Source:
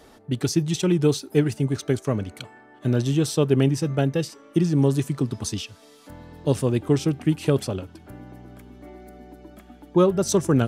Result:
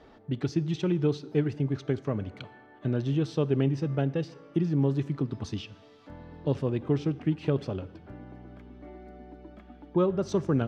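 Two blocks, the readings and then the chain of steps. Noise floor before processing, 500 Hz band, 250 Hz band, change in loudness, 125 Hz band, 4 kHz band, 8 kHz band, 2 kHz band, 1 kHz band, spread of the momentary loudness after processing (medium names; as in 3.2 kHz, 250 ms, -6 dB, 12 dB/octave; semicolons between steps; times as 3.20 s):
-51 dBFS, -6.5 dB, -6.0 dB, -6.0 dB, -5.5 dB, -11.0 dB, under -20 dB, -7.5 dB, -7.0 dB, 20 LU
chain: in parallel at -1 dB: compression, threshold -27 dBFS, peak gain reduction 13.5 dB; on the sum: distance through air 220 m; plate-style reverb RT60 1.2 s, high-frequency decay 0.85×, DRR 17.5 dB; trim -8 dB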